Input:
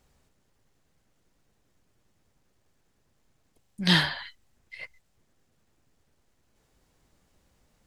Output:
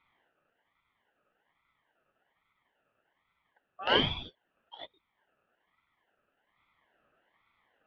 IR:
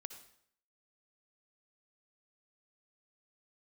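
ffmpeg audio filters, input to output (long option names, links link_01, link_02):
-af "highpass=270,equalizer=frequency=340:width_type=q:width=4:gain=10,equalizer=frequency=510:width_type=q:width=4:gain=5,equalizer=frequency=720:width_type=q:width=4:gain=7,equalizer=frequency=1200:width_type=q:width=4:gain=-9,equalizer=frequency=1700:width_type=q:width=4:gain=9,lowpass=frequency=2100:width=0.5412,lowpass=frequency=2100:width=1.3066,aeval=exprs='val(0)*sin(2*PI*1300*n/s+1300*0.3/1.2*sin(2*PI*1.2*n/s))':channel_layout=same,volume=-1dB"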